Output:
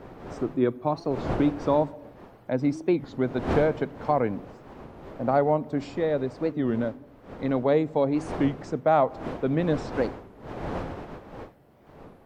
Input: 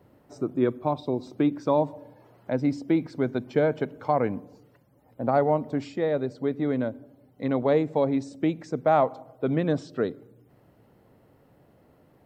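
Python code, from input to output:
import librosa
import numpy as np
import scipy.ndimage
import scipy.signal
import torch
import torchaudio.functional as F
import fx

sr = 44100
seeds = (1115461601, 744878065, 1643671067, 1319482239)

y = fx.dmg_wind(x, sr, seeds[0], corner_hz=620.0, level_db=-38.0)
y = fx.record_warp(y, sr, rpm=33.33, depth_cents=250.0)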